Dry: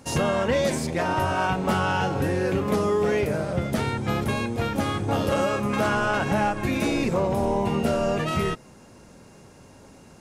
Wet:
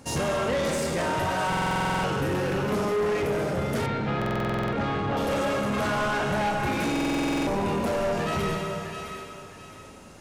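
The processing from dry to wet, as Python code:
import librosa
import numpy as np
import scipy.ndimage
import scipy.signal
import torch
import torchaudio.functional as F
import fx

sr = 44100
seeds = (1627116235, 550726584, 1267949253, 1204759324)

y = fx.echo_thinned(x, sr, ms=662, feedback_pct=33, hz=760.0, wet_db=-9.5)
y = fx.rev_schroeder(y, sr, rt60_s=2.1, comb_ms=28, drr_db=2.0)
y = 10.0 ** (-22.0 / 20.0) * np.tanh(y / 10.0 ** (-22.0 / 20.0))
y = fx.lowpass(y, sr, hz=3300.0, slope=12, at=(3.86, 5.17))
y = fx.buffer_glitch(y, sr, at_s=(1.48, 4.17, 6.91), block=2048, repeats=11)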